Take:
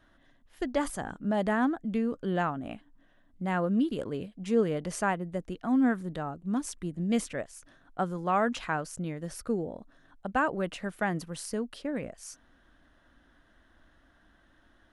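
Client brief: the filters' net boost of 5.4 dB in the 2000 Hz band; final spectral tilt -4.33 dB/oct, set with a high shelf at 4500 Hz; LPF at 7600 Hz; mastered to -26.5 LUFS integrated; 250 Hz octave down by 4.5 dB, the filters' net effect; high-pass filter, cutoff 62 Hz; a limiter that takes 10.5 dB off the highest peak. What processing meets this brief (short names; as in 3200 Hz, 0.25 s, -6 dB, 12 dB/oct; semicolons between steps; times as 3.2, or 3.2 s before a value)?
HPF 62 Hz; LPF 7600 Hz; bell 250 Hz -5.5 dB; bell 2000 Hz +6 dB; high shelf 4500 Hz +8.5 dB; gain +8.5 dB; limiter -14.5 dBFS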